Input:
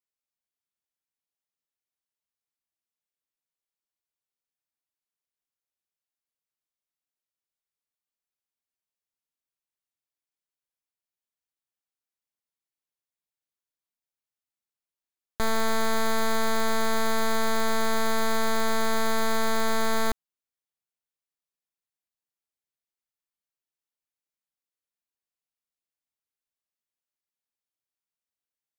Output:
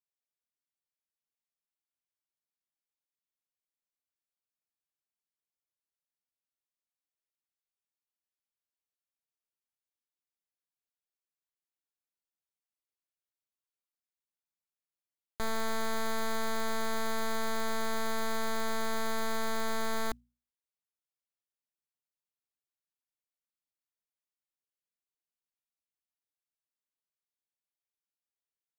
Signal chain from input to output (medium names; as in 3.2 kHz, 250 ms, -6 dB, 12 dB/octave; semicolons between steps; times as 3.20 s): hum notches 60/120/180/240 Hz; short-mantissa float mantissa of 4-bit; trim -7.5 dB